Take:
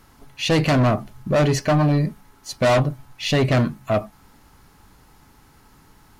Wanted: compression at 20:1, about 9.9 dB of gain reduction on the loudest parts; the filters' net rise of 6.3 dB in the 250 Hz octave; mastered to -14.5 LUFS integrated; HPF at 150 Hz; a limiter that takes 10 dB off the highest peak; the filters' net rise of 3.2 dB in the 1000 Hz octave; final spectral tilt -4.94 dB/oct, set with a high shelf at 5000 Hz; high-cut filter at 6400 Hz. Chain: HPF 150 Hz; LPF 6400 Hz; bell 250 Hz +8.5 dB; bell 1000 Hz +3.5 dB; high shelf 5000 Hz +7.5 dB; compressor 20:1, threshold -19 dBFS; gain +14.5 dB; limiter -4 dBFS

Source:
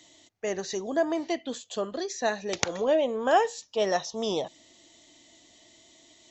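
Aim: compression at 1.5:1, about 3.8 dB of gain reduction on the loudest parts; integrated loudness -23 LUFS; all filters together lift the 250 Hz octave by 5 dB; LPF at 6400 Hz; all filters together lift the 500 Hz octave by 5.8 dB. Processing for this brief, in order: LPF 6400 Hz; bell 250 Hz +4 dB; bell 500 Hz +6.5 dB; compressor 1.5:1, threshold -24 dBFS; gain +3.5 dB

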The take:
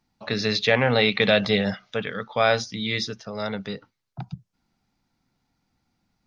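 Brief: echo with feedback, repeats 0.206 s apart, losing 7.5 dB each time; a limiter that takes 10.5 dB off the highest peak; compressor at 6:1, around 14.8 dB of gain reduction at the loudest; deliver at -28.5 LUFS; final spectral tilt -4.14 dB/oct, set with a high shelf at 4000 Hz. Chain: high shelf 4000 Hz +7.5 dB; compressor 6:1, threshold -30 dBFS; limiter -25 dBFS; feedback echo 0.206 s, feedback 42%, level -7.5 dB; gain +8 dB

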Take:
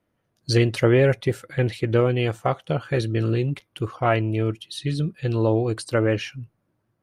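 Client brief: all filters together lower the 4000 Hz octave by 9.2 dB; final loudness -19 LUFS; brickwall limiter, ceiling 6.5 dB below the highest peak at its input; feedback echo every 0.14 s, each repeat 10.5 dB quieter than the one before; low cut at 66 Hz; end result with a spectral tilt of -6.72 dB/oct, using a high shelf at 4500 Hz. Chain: HPF 66 Hz; bell 4000 Hz -8.5 dB; high shelf 4500 Hz -7.5 dB; limiter -11.5 dBFS; feedback echo 0.14 s, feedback 30%, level -10.5 dB; gain +6 dB

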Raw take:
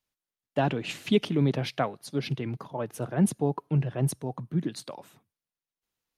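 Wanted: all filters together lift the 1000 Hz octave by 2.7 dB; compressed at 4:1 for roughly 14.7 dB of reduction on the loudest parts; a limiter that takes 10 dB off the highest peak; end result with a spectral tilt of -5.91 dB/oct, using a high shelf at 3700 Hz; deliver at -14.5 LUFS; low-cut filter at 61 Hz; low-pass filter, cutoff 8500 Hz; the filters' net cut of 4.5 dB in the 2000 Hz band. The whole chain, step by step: HPF 61 Hz; LPF 8500 Hz; bell 1000 Hz +5.5 dB; bell 2000 Hz -7 dB; high shelf 3700 Hz -4 dB; compressor 4:1, threshold -36 dBFS; gain +28.5 dB; limiter -3.5 dBFS

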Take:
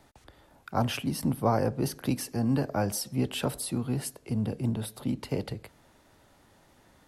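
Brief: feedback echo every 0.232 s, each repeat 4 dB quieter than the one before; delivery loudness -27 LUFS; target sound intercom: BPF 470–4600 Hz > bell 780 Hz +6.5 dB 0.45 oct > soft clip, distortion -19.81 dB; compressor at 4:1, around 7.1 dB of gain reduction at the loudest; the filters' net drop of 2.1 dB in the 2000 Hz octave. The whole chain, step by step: bell 2000 Hz -3 dB; compressor 4:1, threshold -30 dBFS; BPF 470–4600 Hz; bell 780 Hz +6.5 dB 0.45 oct; feedback echo 0.232 s, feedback 63%, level -4 dB; soft clip -23.5 dBFS; gain +12 dB

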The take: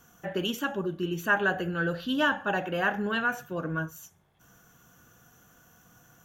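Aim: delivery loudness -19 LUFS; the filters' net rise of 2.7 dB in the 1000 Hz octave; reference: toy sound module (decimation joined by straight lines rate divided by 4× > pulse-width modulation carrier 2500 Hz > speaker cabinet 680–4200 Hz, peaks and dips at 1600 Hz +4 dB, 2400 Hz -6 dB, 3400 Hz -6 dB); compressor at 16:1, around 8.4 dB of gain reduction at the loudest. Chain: bell 1000 Hz +4.5 dB; compressor 16:1, threshold -26 dBFS; decimation joined by straight lines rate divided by 4×; pulse-width modulation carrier 2500 Hz; speaker cabinet 680–4200 Hz, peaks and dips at 1600 Hz +4 dB, 2400 Hz -6 dB, 3400 Hz -6 dB; gain +21.5 dB

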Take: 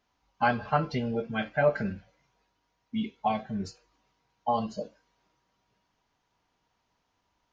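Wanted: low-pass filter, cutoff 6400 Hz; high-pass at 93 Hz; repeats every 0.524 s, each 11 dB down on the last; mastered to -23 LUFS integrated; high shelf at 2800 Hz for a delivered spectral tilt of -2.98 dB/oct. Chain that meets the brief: HPF 93 Hz; LPF 6400 Hz; high shelf 2800 Hz -7 dB; feedback echo 0.524 s, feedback 28%, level -11 dB; gain +8.5 dB

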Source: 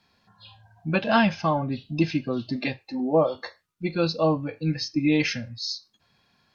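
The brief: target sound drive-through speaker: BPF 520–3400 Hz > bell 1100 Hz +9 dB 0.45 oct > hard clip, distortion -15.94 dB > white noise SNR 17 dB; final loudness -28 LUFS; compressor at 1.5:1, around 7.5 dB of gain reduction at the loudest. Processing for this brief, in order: compressor 1.5:1, threshold -37 dBFS; BPF 520–3400 Hz; bell 1100 Hz +9 dB 0.45 oct; hard clip -22 dBFS; white noise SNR 17 dB; gain +7 dB

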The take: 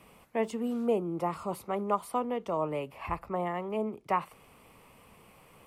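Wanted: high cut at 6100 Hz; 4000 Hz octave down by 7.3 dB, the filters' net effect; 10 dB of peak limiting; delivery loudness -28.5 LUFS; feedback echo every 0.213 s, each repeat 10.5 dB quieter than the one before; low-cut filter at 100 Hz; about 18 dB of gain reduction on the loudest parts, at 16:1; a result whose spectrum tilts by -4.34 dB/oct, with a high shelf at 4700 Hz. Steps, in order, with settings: HPF 100 Hz; LPF 6100 Hz; bell 4000 Hz -8 dB; high shelf 4700 Hz -7 dB; compressor 16:1, threshold -41 dBFS; limiter -39.5 dBFS; feedback echo 0.213 s, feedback 30%, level -10.5 dB; gain +20.5 dB

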